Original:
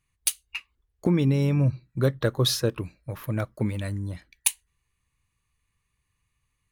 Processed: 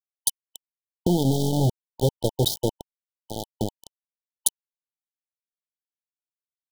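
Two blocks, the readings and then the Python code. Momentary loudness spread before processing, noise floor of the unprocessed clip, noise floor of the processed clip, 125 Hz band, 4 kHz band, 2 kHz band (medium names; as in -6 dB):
14 LU, -77 dBFS, under -85 dBFS, -2.0 dB, -0.5 dB, under -40 dB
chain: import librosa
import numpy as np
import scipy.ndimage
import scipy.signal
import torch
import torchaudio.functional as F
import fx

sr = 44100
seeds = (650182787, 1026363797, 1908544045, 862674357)

y = np.where(np.abs(x) >= 10.0 ** (-20.5 / 20.0), x, 0.0)
y = fx.brickwall_bandstop(y, sr, low_hz=920.0, high_hz=3000.0)
y = y * librosa.db_to_amplitude(1.5)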